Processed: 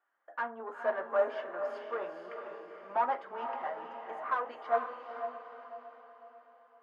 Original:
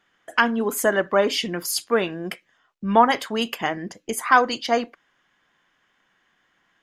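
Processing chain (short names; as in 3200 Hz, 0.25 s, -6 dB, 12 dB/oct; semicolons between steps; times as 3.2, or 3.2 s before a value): flange 0.71 Hz, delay 2.6 ms, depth 3 ms, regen -55%; tube stage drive 23 dB, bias 0.35; Butterworth band-pass 880 Hz, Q 0.9; diffused feedback echo 0.468 s, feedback 47%, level -4.5 dB; on a send at -8 dB: reverb RT60 0.35 s, pre-delay 3 ms; on the sum: upward expander 1.5:1, over -32 dBFS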